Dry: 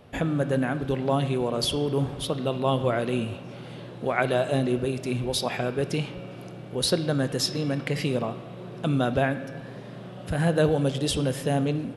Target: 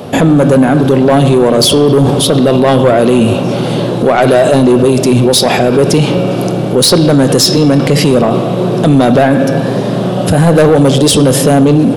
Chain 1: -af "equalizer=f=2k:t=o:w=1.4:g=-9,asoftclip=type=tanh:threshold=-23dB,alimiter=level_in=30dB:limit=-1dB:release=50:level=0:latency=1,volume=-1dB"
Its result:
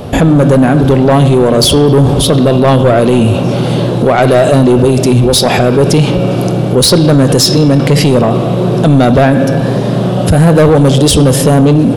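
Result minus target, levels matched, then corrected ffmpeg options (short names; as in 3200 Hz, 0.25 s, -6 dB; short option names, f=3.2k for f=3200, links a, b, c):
125 Hz band +2.5 dB
-af "highpass=150,equalizer=f=2k:t=o:w=1.4:g=-9,asoftclip=type=tanh:threshold=-23dB,alimiter=level_in=30dB:limit=-1dB:release=50:level=0:latency=1,volume=-1dB"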